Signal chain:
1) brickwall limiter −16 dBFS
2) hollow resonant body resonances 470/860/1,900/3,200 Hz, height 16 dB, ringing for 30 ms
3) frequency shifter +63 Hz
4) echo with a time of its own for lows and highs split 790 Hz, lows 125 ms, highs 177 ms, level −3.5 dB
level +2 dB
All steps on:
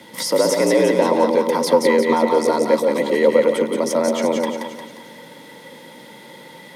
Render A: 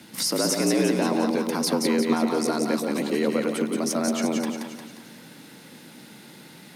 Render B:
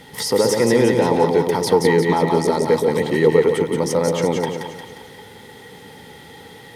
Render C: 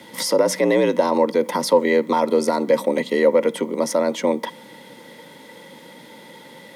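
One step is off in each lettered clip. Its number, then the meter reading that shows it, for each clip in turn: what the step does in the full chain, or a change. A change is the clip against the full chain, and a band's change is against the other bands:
2, 500 Hz band −9.0 dB
3, 125 Hz band +10.5 dB
4, echo-to-direct ratio −2.0 dB to none audible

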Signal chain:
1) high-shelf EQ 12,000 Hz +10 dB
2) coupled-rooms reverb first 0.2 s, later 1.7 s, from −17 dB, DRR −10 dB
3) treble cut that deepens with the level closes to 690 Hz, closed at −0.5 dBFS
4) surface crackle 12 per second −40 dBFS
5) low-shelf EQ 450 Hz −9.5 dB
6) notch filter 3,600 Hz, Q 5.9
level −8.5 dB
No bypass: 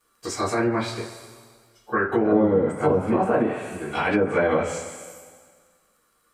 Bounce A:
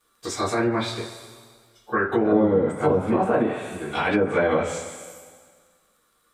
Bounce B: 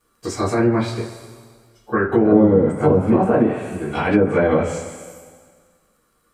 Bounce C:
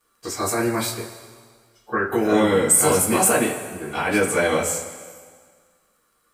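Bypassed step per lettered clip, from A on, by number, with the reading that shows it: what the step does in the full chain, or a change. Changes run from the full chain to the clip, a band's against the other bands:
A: 6, 4 kHz band +3.0 dB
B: 5, 125 Hz band +5.5 dB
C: 3, 8 kHz band +17.5 dB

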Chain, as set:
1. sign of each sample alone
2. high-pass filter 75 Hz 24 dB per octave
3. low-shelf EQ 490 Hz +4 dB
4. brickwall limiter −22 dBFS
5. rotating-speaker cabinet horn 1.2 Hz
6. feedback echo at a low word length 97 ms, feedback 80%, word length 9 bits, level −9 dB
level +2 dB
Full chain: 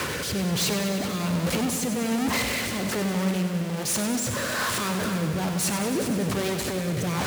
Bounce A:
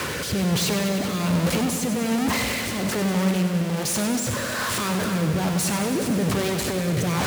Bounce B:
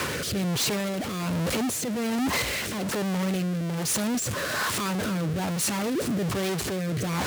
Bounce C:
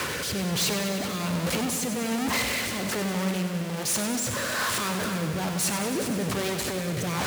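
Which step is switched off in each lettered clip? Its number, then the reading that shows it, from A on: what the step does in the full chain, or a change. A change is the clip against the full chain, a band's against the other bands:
4, average gain reduction 2.5 dB
6, change in integrated loudness −1.0 LU
3, 250 Hz band −2.5 dB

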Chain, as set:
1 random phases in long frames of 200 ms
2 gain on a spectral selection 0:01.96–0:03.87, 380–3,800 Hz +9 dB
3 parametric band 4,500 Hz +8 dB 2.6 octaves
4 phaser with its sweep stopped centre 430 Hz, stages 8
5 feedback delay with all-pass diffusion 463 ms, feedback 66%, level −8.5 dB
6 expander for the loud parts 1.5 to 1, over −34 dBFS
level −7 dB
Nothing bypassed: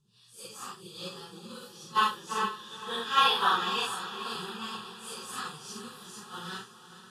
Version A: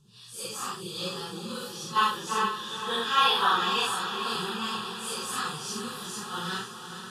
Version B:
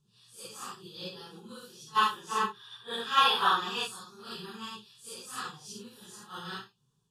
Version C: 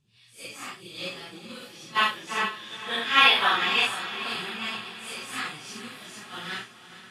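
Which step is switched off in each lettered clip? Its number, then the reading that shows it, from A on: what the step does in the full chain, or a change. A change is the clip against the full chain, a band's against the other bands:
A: 6, 1 kHz band −3.0 dB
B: 5, change in momentary loudness spread +2 LU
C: 4, change in momentary loudness spread +2 LU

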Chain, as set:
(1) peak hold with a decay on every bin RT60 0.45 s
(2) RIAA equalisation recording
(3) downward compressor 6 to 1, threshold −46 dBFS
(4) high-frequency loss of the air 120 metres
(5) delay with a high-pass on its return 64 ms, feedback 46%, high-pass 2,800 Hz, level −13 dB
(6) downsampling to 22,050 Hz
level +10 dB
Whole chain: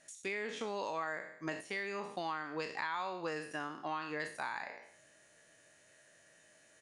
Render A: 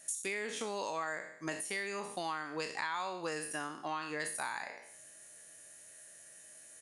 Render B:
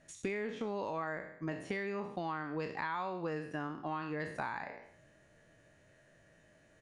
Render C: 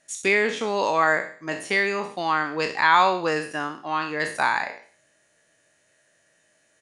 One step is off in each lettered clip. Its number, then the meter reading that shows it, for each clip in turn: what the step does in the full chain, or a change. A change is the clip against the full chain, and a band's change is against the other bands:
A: 4, 8 kHz band +13.0 dB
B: 2, 125 Hz band +8.5 dB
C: 3, average gain reduction 10.0 dB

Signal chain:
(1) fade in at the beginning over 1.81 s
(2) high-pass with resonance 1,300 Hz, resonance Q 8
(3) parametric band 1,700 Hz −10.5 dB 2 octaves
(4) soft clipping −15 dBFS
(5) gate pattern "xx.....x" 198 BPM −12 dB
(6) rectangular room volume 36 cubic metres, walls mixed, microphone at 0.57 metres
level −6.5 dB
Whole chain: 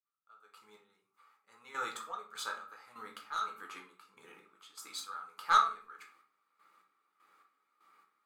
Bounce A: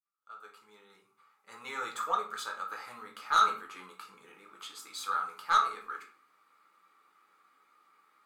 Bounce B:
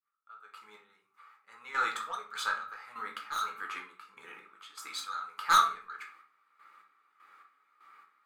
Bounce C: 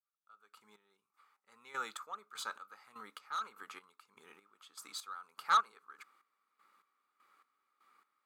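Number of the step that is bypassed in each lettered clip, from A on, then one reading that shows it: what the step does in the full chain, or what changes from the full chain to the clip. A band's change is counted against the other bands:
5, 500 Hz band +2.5 dB
3, 500 Hz band −4.5 dB
6, change in crest factor −5.5 dB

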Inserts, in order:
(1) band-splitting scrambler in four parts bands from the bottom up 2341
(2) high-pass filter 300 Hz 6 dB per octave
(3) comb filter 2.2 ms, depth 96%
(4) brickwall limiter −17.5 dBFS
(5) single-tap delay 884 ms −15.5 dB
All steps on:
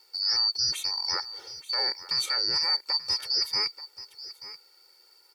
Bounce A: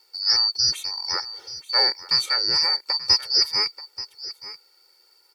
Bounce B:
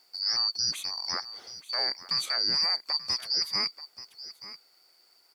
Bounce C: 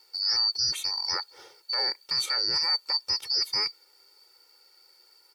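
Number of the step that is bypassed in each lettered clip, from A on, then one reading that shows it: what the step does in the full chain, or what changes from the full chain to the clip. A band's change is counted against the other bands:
4, average gain reduction 3.0 dB
3, 250 Hz band +4.0 dB
5, change in momentary loudness spread −11 LU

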